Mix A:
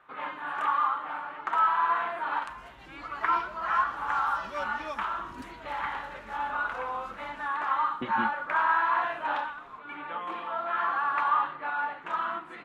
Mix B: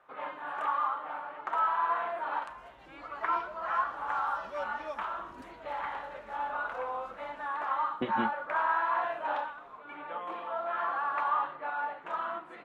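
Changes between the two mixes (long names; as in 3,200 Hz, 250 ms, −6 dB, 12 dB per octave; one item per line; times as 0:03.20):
first sound −6.5 dB
second sound −8.5 dB
master: add parametric band 590 Hz +9 dB 1.1 octaves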